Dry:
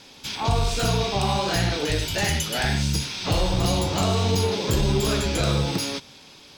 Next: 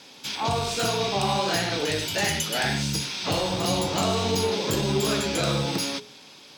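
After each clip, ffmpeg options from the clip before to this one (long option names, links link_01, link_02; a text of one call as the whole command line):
ffmpeg -i in.wav -af "highpass=150,bandreject=frequency=60:width_type=h:width=6,bandreject=frequency=120:width_type=h:width=6,bandreject=frequency=180:width_type=h:width=6,bandreject=frequency=240:width_type=h:width=6,bandreject=frequency=300:width_type=h:width=6,bandreject=frequency=360:width_type=h:width=6,bandreject=frequency=420:width_type=h:width=6" out.wav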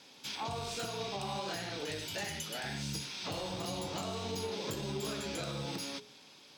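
ffmpeg -i in.wav -af "alimiter=limit=-19dB:level=0:latency=1:release=342,volume=-9dB" out.wav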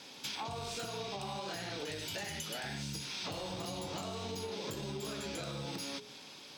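ffmpeg -i in.wav -af "acompressor=threshold=-43dB:ratio=6,volume=5.5dB" out.wav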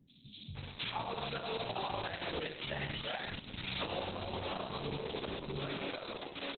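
ffmpeg -i in.wav -filter_complex "[0:a]acrossover=split=220|4500[link_01][link_02][link_03];[link_03]adelay=80[link_04];[link_02]adelay=550[link_05];[link_01][link_05][link_04]amix=inputs=3:normalize=0,volume=3.5dB" -ar 48000 -c:a libopus -b:a 6k out.opus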